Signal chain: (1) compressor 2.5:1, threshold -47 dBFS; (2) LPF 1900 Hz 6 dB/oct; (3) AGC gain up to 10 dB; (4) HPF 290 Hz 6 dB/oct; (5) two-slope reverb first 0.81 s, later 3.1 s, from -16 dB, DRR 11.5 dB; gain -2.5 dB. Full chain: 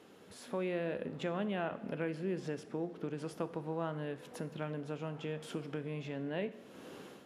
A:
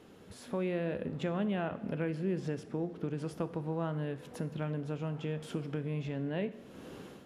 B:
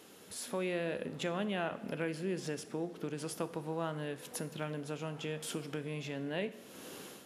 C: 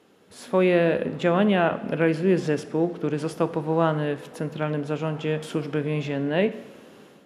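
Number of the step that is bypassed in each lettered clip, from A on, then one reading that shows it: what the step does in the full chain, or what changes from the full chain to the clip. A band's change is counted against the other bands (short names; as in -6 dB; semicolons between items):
4, crest factor change -2.0 dB; 2, 8 kHz band +11.5 dB; 1, mean gain reduction 12.0 dB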